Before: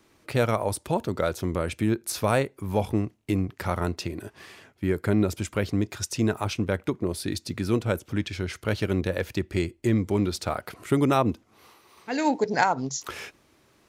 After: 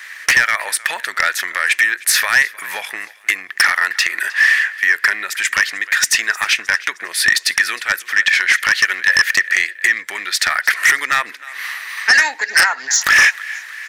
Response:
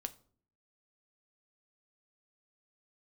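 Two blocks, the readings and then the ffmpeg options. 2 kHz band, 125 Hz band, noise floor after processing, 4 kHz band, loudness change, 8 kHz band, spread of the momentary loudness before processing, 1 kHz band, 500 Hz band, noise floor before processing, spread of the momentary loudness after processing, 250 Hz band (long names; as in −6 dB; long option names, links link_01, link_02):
+24.0 dB, below −20 dB, −39 dBFS, +18.5 dB, +12.5 dB, +17.5 dB, 8 LU, +6.0 dB, −9.5 dB, −63 dBFS, 9 LU, below −15 dB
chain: -filter_complex "[0:a]acompressor=threshold=-33dB:ratio=4,highpass=frequency=1800:width_type=q:width=11,asplit=2[link_01][link_02];[link_02]aecho=0:1:310|620|930:0.0794|0.0397|0.0199[link_03];[link_01][link_03]amix=inputs=2:normalize=0,aeval=exprs='0.251*sin(PI/2*4.47*val(0)/0.251)':channel_layout=same,volume=6dB"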